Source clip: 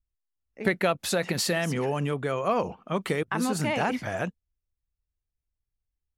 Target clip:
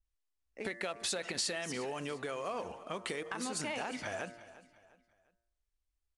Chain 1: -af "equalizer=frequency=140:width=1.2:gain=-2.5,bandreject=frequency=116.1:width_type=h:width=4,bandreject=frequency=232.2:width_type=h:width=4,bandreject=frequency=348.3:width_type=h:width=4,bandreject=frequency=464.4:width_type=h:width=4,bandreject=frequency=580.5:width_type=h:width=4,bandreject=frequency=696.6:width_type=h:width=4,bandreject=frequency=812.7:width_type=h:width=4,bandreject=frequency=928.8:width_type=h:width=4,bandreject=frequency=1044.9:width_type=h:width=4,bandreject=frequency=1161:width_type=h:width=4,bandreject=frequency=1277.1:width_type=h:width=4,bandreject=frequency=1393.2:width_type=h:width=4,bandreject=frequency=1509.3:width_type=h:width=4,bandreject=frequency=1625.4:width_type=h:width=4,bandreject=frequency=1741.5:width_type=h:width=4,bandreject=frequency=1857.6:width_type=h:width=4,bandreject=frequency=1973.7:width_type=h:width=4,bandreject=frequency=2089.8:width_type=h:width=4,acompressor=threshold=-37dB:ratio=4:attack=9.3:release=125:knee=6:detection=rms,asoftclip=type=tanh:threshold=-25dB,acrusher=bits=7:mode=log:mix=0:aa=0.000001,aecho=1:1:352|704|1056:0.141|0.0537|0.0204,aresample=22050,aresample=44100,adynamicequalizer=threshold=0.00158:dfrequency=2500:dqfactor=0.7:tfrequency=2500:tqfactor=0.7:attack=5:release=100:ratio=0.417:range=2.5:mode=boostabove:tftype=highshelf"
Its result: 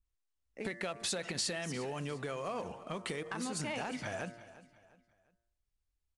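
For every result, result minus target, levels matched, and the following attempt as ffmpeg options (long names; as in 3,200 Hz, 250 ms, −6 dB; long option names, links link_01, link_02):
soft clipping: distortion +12 dB; 125 Hz band +6.5 dB
-af "equalizer=frequency=140:width=1.2:gain=-2.5,bandreject=frequency=116.1:width_type=h:width=4,bandreject=frequency=232.2:width_type=h:width=4,bandreject=frequency=348.3:width_type=h:width=4,bandreject=frequency=464.4:width_type=h:width=4,bandreject=frequency=580.5:width_type=h:width=4,bandreject=frequency=696.6:width_type=h:width=4,bandreject=frequency=812.7:width_type=h:width=4,bandreject=frequency=928.8:width_type=h:width=4,bandreject=frequency=1044.9:width_type=h:width=4,bandreject=frequency=1161:width_type=h:width=4,bandreject=frequency=1277.1:width_type=h:width=4,bandreject=frequency=1393.2:width_type=h:width=4,bandreject=frequency=1509.3:width_type=h:width=4,bandreject=frequency=1625.4:width_type=h:width=4,bandreject=frequency=1741.5:width_type=h:width=4,bandreject=frequency=1857.6:width_type=h:width=4,bandreject=frequency=1973.7:width_type=h:width=4,bandreject=frequency=2089.8:width_type=h:width=4,acompressor=threshold=-37dB:ratio=4:attack=9.3:release=125:knee=6:detection=rms,asoftclip=type=tanh:threshold=-18.5dB,acrusher=bits=7:mode=log:mix=0:aa=0.000001,aecho=1:1:352|704|1056:0.141|0.0537|0.0204,aresample=22050,aresample=44100,adynamicequalizer=threshold=0.00158:dfrequency=2500:dqfactor=0.7:tfrequency=2500:tqfactor=0.7:attack=5:release=100:ratio=0.417:range=2.5:mode=boostabove:tftype=highshelf"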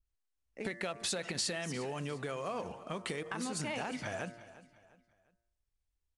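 125 Hz band +6.5 dB
-af "equalizer=frequency=140:width=1.2:gain=-12,bandreject=frequency=116.1:width_type=h:width=4,bandreject=frequency=232.2:width_type=h:width=4,bandreject=frequency=348.3:width_type=h:width=4,bandreject=frequency=464.4:width_type=h:width=4,bandreject=frequency=580.5:width_type=h:width=4,bandreject=frequency=696.6:width_type=h:width=4,bandreject=frequency=812.7:width_type=h:width=4,bandreject=frequency=928.8:width_type=h:width=4,bandreject=frequency=1044.9:width_type=h:width=4,bandreject=frequency=1161:width_type=h:width=4,bandreject=frequency=1277.1:width_type=h:width=4,bandreject=frequency=1393.2:width_type=h:width=4,bandreject=frequency=1509.3:width_type=h:width=4,bandreject=frequency=1625.4:width_type=h:width=4,bandreject=frequency=1741.5:width_type=h:width=4,bandreject=frequency=1857.6:width_type=h:width=4,bandreject=frequency=1973.7:width_type=h:width=4,bandreject=frequency=2089.8:width_type=h:width=4,acompressor=threshold=-37dB:ratio=4:attack=9.3:release=125:knee=6:detection=rms,asoftclip=type=tanh:threshold=-18.5dB,acrusher=bits=7:mode=log:mix=0:aa=0.000001,aecho=1:1:352|704|1056:0.141|0.0537|0.0204,aresample=22050,aresample=44100,adynamicequalizer=threshold=0.00158:dfrequency=2500:dqfactor=0.7:tfrequency=2500:tqfactor=0.7:attack=5:release=100:ratio=0.417:range=2.5:mode=boostabove:tftype=highshelf"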